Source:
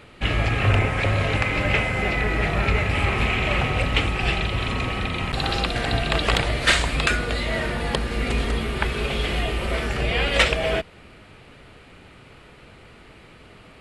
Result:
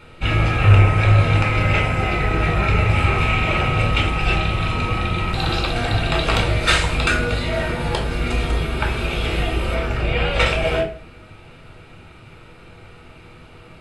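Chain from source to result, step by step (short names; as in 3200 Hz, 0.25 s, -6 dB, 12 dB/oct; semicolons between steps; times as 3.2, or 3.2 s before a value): 9.74–10.46 high shelf 4500 Hz -9 dB; reverb RT60 0.45 s, pre-delay 3 ms, DRR 0.5 dB; gain -4 dB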